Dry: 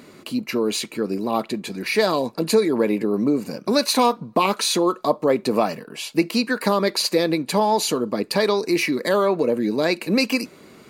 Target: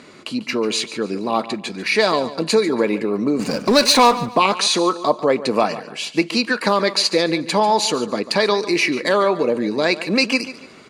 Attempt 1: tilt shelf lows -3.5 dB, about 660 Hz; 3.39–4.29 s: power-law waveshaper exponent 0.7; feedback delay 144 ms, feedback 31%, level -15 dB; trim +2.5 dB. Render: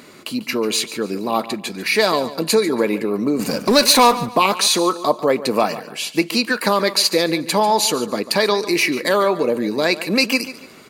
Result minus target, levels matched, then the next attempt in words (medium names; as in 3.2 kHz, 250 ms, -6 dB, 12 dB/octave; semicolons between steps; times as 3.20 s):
8 kHz band +3.5 dB
Bessel low-pass 6.6 kHz, order 8; tilt shelf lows -3.5 dB, about 660 Hz; 3.39–4.29 s: power-law waveshaper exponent 0.7; feedback delay 144 ms, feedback 31%, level -15 dB; trim +2.5 dB